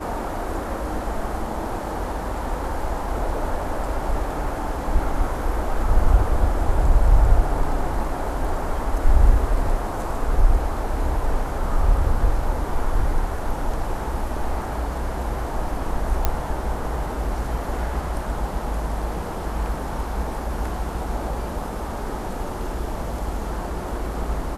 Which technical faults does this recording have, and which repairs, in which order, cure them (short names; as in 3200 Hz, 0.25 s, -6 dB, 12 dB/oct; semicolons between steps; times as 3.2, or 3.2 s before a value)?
16.25 pop -5 dBFS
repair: de-click